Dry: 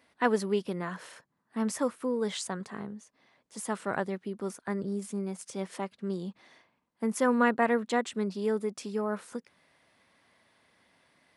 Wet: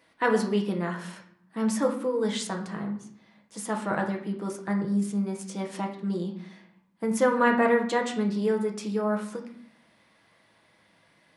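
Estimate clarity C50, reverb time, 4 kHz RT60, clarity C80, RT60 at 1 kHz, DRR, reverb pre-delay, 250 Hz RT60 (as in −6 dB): 8.5 dB, 0.65 s, 0.45 s, 12.5 dB, 0.65 s, 2.0 dB, 6 ms, 1.0 s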